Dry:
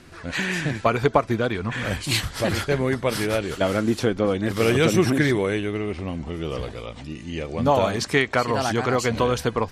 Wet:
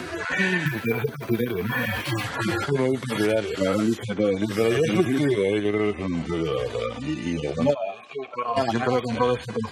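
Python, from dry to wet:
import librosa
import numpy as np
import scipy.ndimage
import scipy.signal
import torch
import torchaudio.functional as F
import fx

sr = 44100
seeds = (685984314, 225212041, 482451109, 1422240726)

p1 = fx.hpss_only(x, sr, part='harmonic')
p2 = fx.highpass(p1, sr, hz=280.0, slope=6)
p3 = fx.level_steps(p2, sr, step_db=10)
p4 = p2 + F.gain(torch.from_numpy(p3), 1.5).numpy()
p5 = fx.resample_bad(p4, sr, factor=3, down='filtered', up='hold', at=(0.66, 2.24))
p6 = fx.vowel_filter(p5, sr, vowel='a', at=(7.73, 8.56), fade=0.02)
y = fx.band_squash(p6, sr, depth_pct=70)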